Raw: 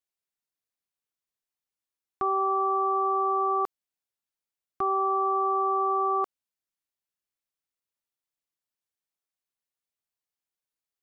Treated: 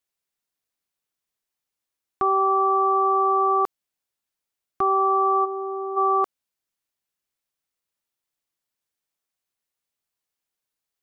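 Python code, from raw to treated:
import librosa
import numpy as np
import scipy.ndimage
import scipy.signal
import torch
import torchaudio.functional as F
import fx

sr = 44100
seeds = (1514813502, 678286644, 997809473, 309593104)

y = fx.peak_eq(x, sr, hz=1300.0, db=-14.5, octaves=2.4, at=(5.44, 5.96), fade=0.02)
y = F.gain(torch.from_numpy(y), 5.5).numpy()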